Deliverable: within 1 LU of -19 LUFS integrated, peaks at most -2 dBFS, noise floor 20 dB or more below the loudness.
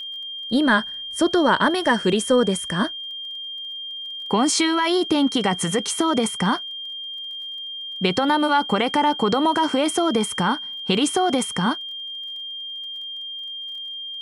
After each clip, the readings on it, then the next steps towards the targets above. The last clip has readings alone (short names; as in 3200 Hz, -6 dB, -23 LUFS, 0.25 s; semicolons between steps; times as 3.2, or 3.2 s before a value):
ticks 23/s; steady tone 3200 Hz; tone level -30 dBFS; loudness -22.0 LUFS; peak -7.0 dBFS; loudness target -19.0 LUFS
-> de-click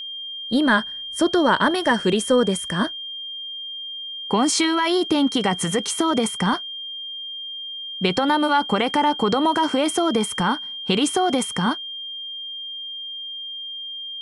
ticks 0/s; steady tone 3200 Hz; tone level -30 dBFS
-> notch 3200 Hz, Q 30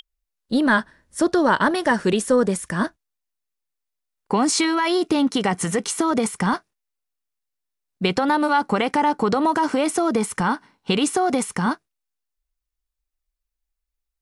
steady tone none; loudness -21.0 LUFS; peak -7.0 dBFS; loudness target -19.0 LUFS
-> gain +2 dB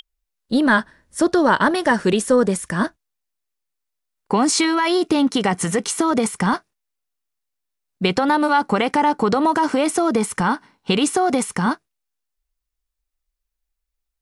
loudness -19.0 LUFS; peak -5.0 dBFS; noise floor -80 dBFS